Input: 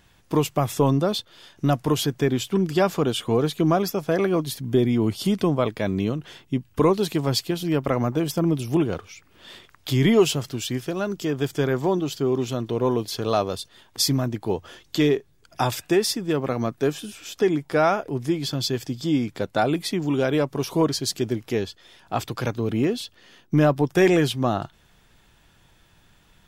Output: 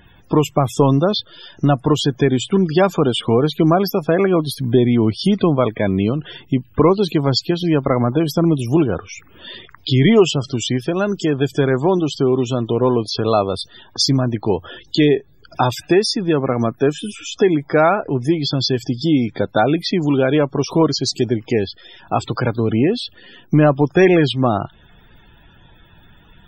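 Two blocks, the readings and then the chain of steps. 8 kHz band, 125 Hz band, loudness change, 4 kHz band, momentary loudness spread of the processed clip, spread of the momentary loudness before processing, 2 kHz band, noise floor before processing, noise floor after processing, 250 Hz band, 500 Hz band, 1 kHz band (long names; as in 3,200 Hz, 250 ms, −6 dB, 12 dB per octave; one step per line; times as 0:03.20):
+1.0 dB, +6.5 dB, +6.0 dB, +6.0 dB, 9 LU, 8 LU, +5.5 dB, −58 dBFS, −49 dBFS, +6.5 dB, +6.0 dB, +6.0 dB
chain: in parallel at +2 dB: downward compressor, threshold −29 dBFS, peak gain reduction 16 dB
on the sum: spectral peaks only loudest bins 64
level +3.5 dB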